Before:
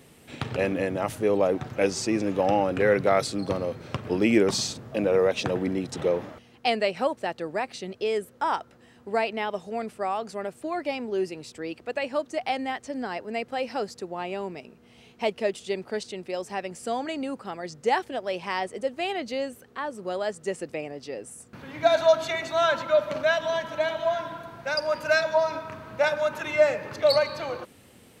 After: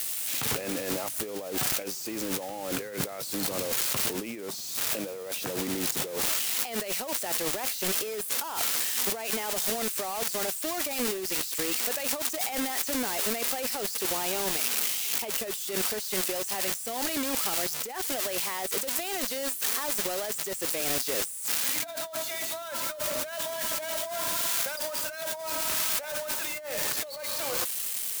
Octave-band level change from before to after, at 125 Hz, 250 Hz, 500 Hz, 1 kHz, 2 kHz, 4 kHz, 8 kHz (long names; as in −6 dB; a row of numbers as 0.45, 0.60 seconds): −7.5, −6.5, −10.0, −7.0, −4.0, +3.0, +13.0 decibels